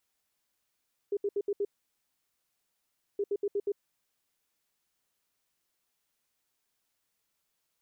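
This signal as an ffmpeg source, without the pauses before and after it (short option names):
-f lavfi -i "aevalsrc='0.0473*sin(2*PI*405*t)*clip(min(mod(mod(t,2.07),0.12),0.05-mod(mod(t,2.07),0.12))/0.005,0,1)*lt(mod(t,2.07),0.6)':d=4.14:s=44100"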